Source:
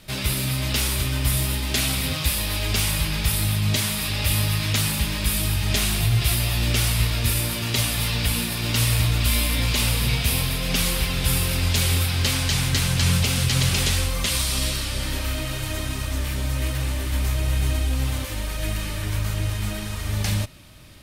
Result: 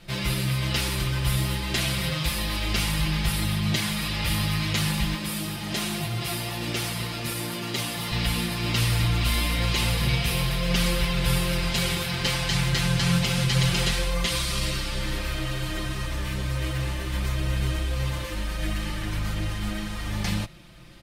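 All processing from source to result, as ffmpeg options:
-filter_complex "[0:a]asettb=1/sr,asplit=3[a][b][c];[a]atrim=end=5.154[d];[b]atrim=start=5.15:end=8.12,asetpts=PTS-STARTPTS,afade=t=in:d=0.004:c=qsin,afade=t=out:st=2.966:d=0.004:c=qsin,highpass=170,equalizer=f=2.6k:t=o:w=2.4:g=-4[e];[c]atrim=start=8.116[f];[d][e]acrossfade=d=0.004:c1=hsin:c2=qsin[g];[g][f]acrossfade=d=0.004:c1=qsin:c2=hsin,lowpass=f=3.7k:p=1,aecho=1:1:5.8:0.83,volume=-2dB"

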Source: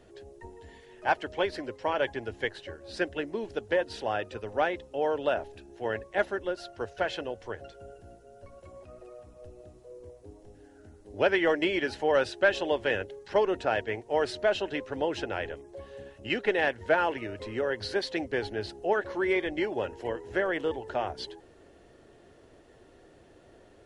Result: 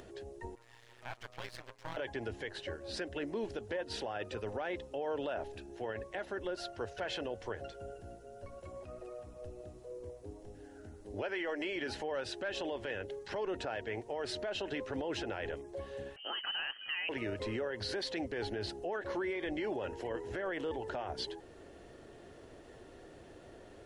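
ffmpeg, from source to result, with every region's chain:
-filter_complex "[0:a]asettb=1/sr,asplit=3[a][b][c];[a]atrim=end=0.554[d];[b]atrim=start=0.55:end=1.97,asetpts=PTS-STARTPTS,afade=t=in:d=0.004:c=qsin,afade=t=out:st=1.416:d=0.004:c=qsin,highpass=740,aeval=exprs='max(val(0),0)':c=same,tremolo=f=120:d=0.889[e];[c]atrim=start=1.966[f];[d][e]acrossfade=d=0.004:c1=hsin:c2=qsin[g];[g][f]acrossfade=d=0.004:c1=qsin:c2=hsin,asettb=1/sr,asplit=3[h][i][j];[h]atrim=end=11.224[k];[i]atrim=start=11.22:end=11.76,asetpts=PTS-STARTPTS,afade=t=in:d=0.004:c=qsin,afade=t=out:st=0.536:d=0.004:c=qsin,equalizer=f=110:t=o:w=1.8:g=-14,bandreject=f=3.6k:w=6.5,acompressor=mode=upward:threshold=-27dB:ratio=2.5:attack=3.2:release=140:knee=2.83:detection=peak[l];[j]atrim=start=11.756[m];[k][l]acrossfade=d=0.004:c1=hsin:c2=qsin[n];[n][m]acrossfade=d=0.004:c1=qsin:c2=hsin,asettb=1/sr,asplit=3[o][p][q];[o]atrim=end=16.164[r];[p]atrim=start=16.16:end=17.09,asetpts=PTS-STARTPTS,afade=t=in:d=0.004:c=qsin,afade=t=out:st=0.926:d=0.004:c=qsin,highpass=f=260:w=0.5412,highpass=f=260:w=1.3066,lowpass=f=2.9k:t=q:w=0.5098,lowpass=f=2.9k:t=q:w=0.6013,lowpass=f=2.9k:t=q:w=0.9,lowpass=f=2.9k:t=q:w=2.563,afreqshift=-3400[s];[q]atrim=start=17.086[t];[r][s]acrossfade=d=0.004:c1=hsin:c2=qsin[u];[u][t]acrossfade=d=0.004:c1=qsin:c2=hsin,acompressor=threshold=-28dB:ratio=6,alimiter=level_in=6dB:limit=-24dB:level=0:latency=1:release=30,volume=-6dB,acompressor=mode=upward:threshold=-50dB:ratio=2.5,volume=1dB"

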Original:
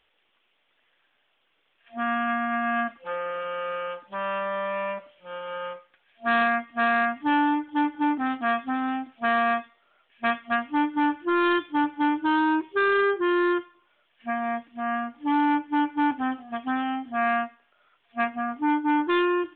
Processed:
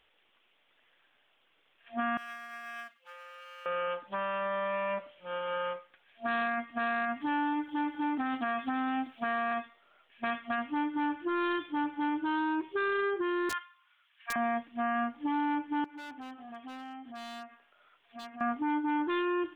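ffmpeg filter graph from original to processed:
-filter_complex "[0:a]asettb=1/sr,asplit=3[a][b][c];[a]atrim=end=2.174[d];[b]atrim=start=2.17:end=3.66,asetpts=PTS-STARTPTS,afade=t=in:d=0.004:c=qsin,afade=t=out:st=1.486:d=0.004:c=qsin,aeval=exprs='if(lt(val(0),0),0.708*val(0),val(0))':c=same,aderivative[e];[c]atrim=start=3.656[f];[d][e]acrossfade=d=0.004:c1=hsin:c2=qsin[g];[g][f]acrossfade=d=0.004:c1=qsin:c2=hsin,asettb=1/sr,asplit=3[h][i][j];[h]atrim=end=7.214[k];[i]atrim=start=7.21:end=9.52,asetpts=PTS-STARTPTS,afade=t=in:d=0.004:c=qsin,afade=t=out:st=2.306:d=0.004:c=qsin,highshelf=f=3.4k:g=10,acrossover=split=2500[l][m];[m]acompressor=threshold=-45dB:ratio=4:attack=1:release=60[n];[l][n]amix=inputs=2:normalize=0[o];[j]atrim=start=9.516[p];[k][o]acrossfade=d=0.004:c1=hsin:c2=qsin[q];[q][p]acrossfade=d=0.004:c1=qsin:c2=hsin,asettb=1/sr,asplit=3[r][s][t];[r]atrim=end=13.494[u];[s]atrim=start=13.49:end=14.36,asetpts=PTS-STARTPTS,afade=t=in:d=0.004:c=qsin,afade=t=out:st=0.866:d=0.004:c=qsin,highpass=f=1.1k:w=0.5412,highpass=f=1.1k:w=1.3066,aeval=exprs='(mod(14.1*val(0)+1,2)-1)/14.1':c=same[v];[t]atrim=start=14.356[w];[u][v]acrossfade=d=0.004:c1=hsin:c2=qsin[x];[x][w]acrossfade=d=0.004:c1=qsin:c2=hsin,asettb=1/sr,asplit=3[y][z][aa];[y]atrim=end=15.844[ab];[z]atrim=start=15.84:end=18.41,asetpts=PTS-STARTPTS,afade=t=in:d=0.004:c=qsin,afade=t=out:st=2.566:d=0.004:c=qsin,aeval=exprs='0.075*(abs(mod(val(0)/0.075+3,4)-2)-1)':c=same,acompressor=threshold=-42dB:ratio=6:attack=3.2:release=140:knee=1:detection=peak,lowshelf=f=200:g=-5.5[ac];[aa]atrim=start=18.406[ad];[ab][ac]acrossfade=d=0.004:c1=hsin:c2=qsin[ae];[ae][ad]acrossfade=d=0.004:c1=qsin:c2=hsin,acompressor=threshold=-25dB:ratio=2.5,alimiter=level_in=0.5dB:limit=-24dB:level=0:latency=1:release=26,volume=-0.5dB"

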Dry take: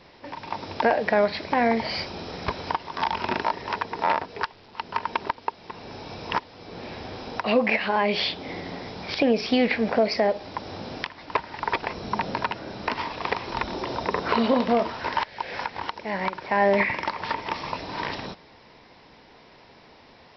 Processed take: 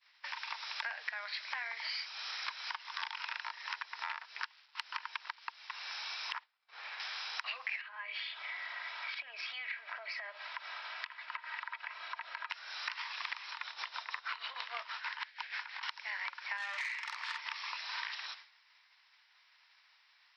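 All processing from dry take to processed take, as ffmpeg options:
-filter_complex "[0:a]asettb=1/sr,asplit=3[a][b][c];[a]atrim=end=6.324[d];[b]atrim=start=6.32:end=7,asetpts=PTS-STARTPTS,afade=t=in:d=0.004:c=qsin,afade=t=out:st=0.676:d=0.004:c=qsin,lowpass=f=1.3k:p=1,agate=range=-33dB:threshold=-38dB:ratio=3:release=100:detection=peak[e];[c]atrim=start=6.996[f];[d][e]acrossfade=d=0.004:c1=hsin:c2=qsin[g];[g][f]acrossfade=d=0.004:c1=qsin:c2=hsin,asettb=1/sr,asplit=3[h][i][j];[h]atrim=end=7.814[k];[i]atrim=start=7.81:end=12.5,asetpts=PTS-STARTPTS,afade=t=in:d=0.004:c=qsin,afade=t=out:st=4.686:d=0.004:c=qsin,aecho=1:1:3.1:0.54,atrim=end_sample=206829,acompressor=threshold=-33dB:ratio=3:attack=3.2:release=140:knee=1:detection=peak,highpass=130,lowpass=2.4k[l];[j]atrim=start=12.496[m];[k][l]acrossfade=d=0.004:c1=hsin:c2=qsin[n];[n][m]acrossfade=d=0.004:c1=qsin:c2=hsin,asettb=1/sr,asplit=3[o][p][q];[o]atrim=end=13.514[r];[p]atrim=start=13.51:end=15.83,asetpts=PTS-STARTPTS,afade=t=in:d=0.004:c=qsin,afade=t=out:st=2.316:d=0.004:c=qsin,tremolo=f=6.3:d=0.77,highpass=140,lowpass=5k[s];[q]atrim=start=15.826[t];[r][s]acrossfade=d=0.004:c1=hsin:c2=qsin[u];[u][t]acrossfade=d=0.004:c1=qsin:c2=hsin,asettb=1/sr,asplit=3[v][w][x];[v]atrim=end=16.574[y];[w]atrim=start=16.57:end=17.38,asetpts=PTS-STARTPTS,afade=t=in:d=0.004:c=qsin,afade=t=out:st=0.806:d=0.004:c=qsin,bandreject=f=490:w=14,asplit=2[z][aa];[aa]adelay=49,volume=-2dB[ab];[z][ab]amix=inputs=2:normalize=0,atrim=end_sample=35721,aeval=exprs='(tanh(8.91*val(0)+0.5)-tanh(0.5))/8.91':c=same[ac];[x]atrim=start=17.376[ad];[y][ac]acrossfade=d=0.004:c1=hsin:c2=qsin[ae];[ae][ad]acrossfade=d=0.004:c1=qsin:c2=hsin,agate=range=-33dB:threshold=-40dB:ratio=3:detection=peak,highpass=f=1.3k:w=0.5412,highpass=f=1.3k:w=1.3066,acompressor=threshold=-45dB:ratio=5,volume=6.5dB"

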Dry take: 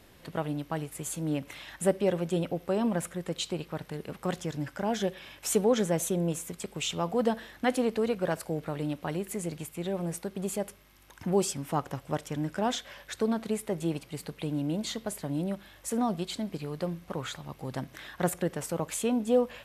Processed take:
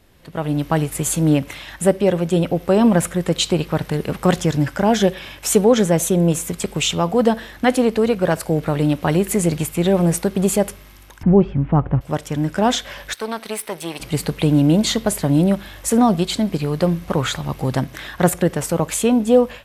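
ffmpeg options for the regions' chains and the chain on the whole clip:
-filter_complex "[0:a]asettb=1/sr,asplit=3[a][b][c];[a]atrim=end=11.234[d];[b]atrim=start=11.23:end=12.01,asetpts=PTS-STARTPTS,afade=t=in:d=0.004:c=qsin,afade=t=out:st=0.776:d=0.004:c=qsin,lowpass=f=2.8k:w=0.5412,lowpass=f=2.8k:w=1.3066,aemphasis=mode=reproduction:type=riaa[e];[c]atrim=start=12.006[f];[d][e]acrossfade=d=0.004:c1=hsin:c2=qsin[g];[g][f]acrossfade=d=0.004:c1=qsin:c2=hsin,asettb=1/sr,asplit=3[h][i][j];[h]atrim=end=13.134[k];[i]atrim=start=13.13:end=14,asetpts=PTS-STARTPTS,afade=t=in:d=0.004:c=qsin,afade=t=out:st=0.866:d=0.004:c=qsin,aeval=exprs='if(lt(val(0),0),0.447*val(0),val(0))':c=same,highpass=f=1.4k:p=1,bandreject=f=7k:w=5.2[l];[j]atrim=start=13.996[m];[k][l]acrossfade=d=0.004:c1=hsin:c2=qsin[n];[n][m]acrossfade=d=0.004:c1=qsin:c2=hsin,lowshelf=f=100:g=7.5,dynaudnorm=f=320:g=3:m=17dB,volume=-1dB"

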